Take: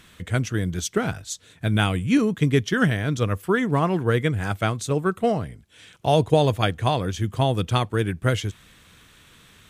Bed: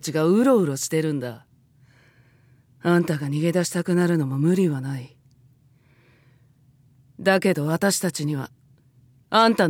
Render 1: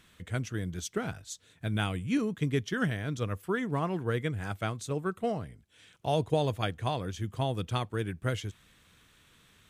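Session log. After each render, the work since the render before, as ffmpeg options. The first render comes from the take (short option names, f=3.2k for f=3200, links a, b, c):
-af "volume=-9.5dB"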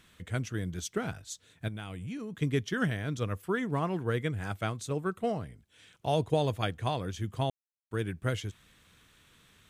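-filter_complex "[0:a]asettb=1/sr,asplit=3[a][b][c];[a]atrim=end=1.684[d];[b]atrim=start=1.68:end=2.42,asetpts=PTS-STARTPTS,afade=t=in:d=0.004:c=qsin,afade=t=out:st=0.736:d=0.004:c=qsin,acompressor=threshold=-35dB:ratio=10:attack=3.2:release=140:knee=1:detection=peak[e];[c]atrim=start=2.416[f];[d][e]acrossfade=d=0.004:c1=hsin:c2=qsin[g];[g][f]acrossfade=d=0.004:c1=qsin:c2=hsin,asplit=3[h][i][j];[h]atrim=end=7.5,asetpts=PTS-STARTPTS,afade=t=out:st=7.496:d=0.004:c=hsin[k];[i]atrim=start=7.5:end=7.91,asetpts=PTS-STARTPTS,volume=0[l];[j]atrim=start=7.91,asetpts=PTS-STARTPTS,afade=t=in:d=0.004:c=hsin[m];[k][l][m]concat=n=3:v=0:a=1"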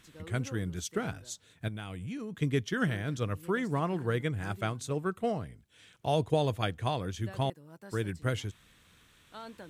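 -filter_complex "[1:a]volume=-29dB[a];[0:a][a]amix=inputs=2:normalize=0"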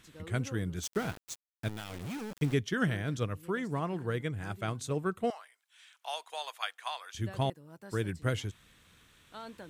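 -filter_complex "[0:a]asettb=1/sr,asplit=3[a][b][c];[a]atrim=end=0.834[d];[b]atrim=start=0.83:end=2.54,asetpts=PTS-STARTPTS,afade=t=in:d=0.004:c=qsin,afade=t=out:st=1.706:d=0.004:c=qsin,aeval=exprs='val(0)*gte(abs(val(0)),0.0112)':c=same[e];[c]atrim=start=2.536[f];[d][e]acrossfade=d=0.004:c1=hsin:c2=qsin[g];[g][f]acrossfade=d=0.004:c1=qsin:c2=hsin,asettb=1/sr,asplit=3[h][i][j];[h]atrim=end=5.304[k];[i]atrim=start=5.3:end=7.15,asetpts=PTS-STARTPTS,afade=t=in:d=0.004:c=qsin,afade=t=out:st=1.846:d=0.004:c=qsin,highpass=f=900:w=0.5412,highpass=f=900:w=1.3066[l];[j]atrim=start=7.146[m];[k][l]acrossfade=d=0.004:c1=hsin:c2=qsin[n];[n][m]acrossfade=d=0.004:c1=qsin:c2=hsin,asplit=3[o][p][q];[o]atrim=end=3.262[r];[p]atrim=start=3.258:end=4.682,asetpts=PTS-STARTPTS,volume=-3dB[s];[q]atrim=start=4.678[t];[r][s]acrossfade=d=0.004:c1=hsin:c2=hsin[u];[u][t]acrossfade=d=0.004:c1=hsin:c2=hsin"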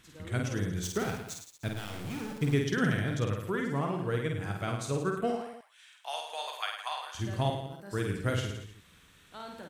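-af "aecho=1:1:50|105|165.5|232|305.3:0.631|0.398|0.251|0.158|0.1"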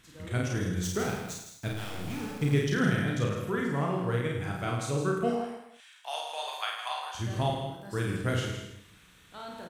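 -filter_complex "[0:a]asplit=2[a][b];[b]adelay=34,volume=-4.5dB[c];[a][c]amix=inputs=2:normalize=0,aecho=1:1:160:0.335"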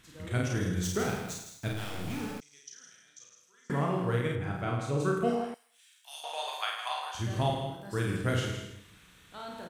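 -filter_complex "[0:a]asettb=1/sr,asplit=3[a][b][c];[a]atrim=end=2.404[d];[b]atrim=start=2.4:end=3.7,asetpts=PTS-STARTPTS,afade=t=in:d=0.004:c=qsin,afade=t=out:st=1.296:d=0.004:c=qsin,bandpass=f=6.1k:t=q:w=6.6[e];[c]atrim=start=3.696[f];[d][e]acrossfade=d=0.004:c1=hsin:c2=qsin[g];[g][f]acrossfade=d=0.004:c1=qsin:c2=hsin,asettb=1/sr,asplit=3[h][i][j];[h]atrim=end=4.354[k];[i]atrim=start=4.35:end=5,asetpts=PTS-STARTPTS,afade=t=in:d=0.004:c=qsin,afade=t=out:st=0.646:d=0.004:c=qsin,highshelf=f=3.6k:g=-11.5[l];[j]atrim=start=4.996[m];[k][l]acrossfade=d=0.004:c1=hsin:c2=qsin[n];[n][m]acrossfade=d=0.004:c1=qsin:c2=hsin,asettb=1/sr,asplit=3[o][p][q];[o]atrim=end=5.544[r];[p]atrim=start=5.54:end=6.24,asetpts=PTS-STARTPTS,afade=t=in:d=0.004:c=qsin,afade=t=out:st=0.696:d=0.004:c=qsin,aderivative[s];[q]atrim=start=6.236[t];[r][s]acrossfade=d=0.004:c1=hsin:c2=qsin[u];[u][t]acrossfade=d=0.004:c1=qsin:c2=hsin"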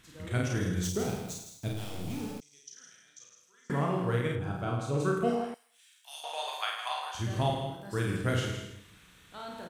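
-filter_complex "[0:a]asettb=1/sr,asplit=3[a][b][c];[a]atrim=end=0.894[d];[b]atrim=start=0.89:end=2.77,asetpts=PTS-STARTPTS,afade=t=in:d=0.004:c=qsin,afade=t=out:st=1.876:d=0.004:c=qsin,equalizer=f=1.6k:t=o:w=1.3:g=-10[e];[c]atrim=start=2.766[f];[d][e]acrossfade=d=0.004:c1=hsin:c2=qsin[g];[g][f]acrossfade=d=0.004:c1=qsin:c2=hsin,asettb=1/sr,asplit=3[h][i][j];[h]atrim=end=4.394[k];[i]atrim=start=4.39:end=4.94,asetpts=PTS-STARTPTS,afade=t=in:d=0.004:c=qsin,afade=t=out:st=0.546:d=0.004:c=qsin,equalizer=f=2k:w=3.7:g=-12.5[l];[j]atrim=start=4.936[m];[k][l]acrossfade=d=0.004:c1=hsin:c2=qsin[n];[n][m]acrossfade=d=0.004:c1=qsin:c2=hsin"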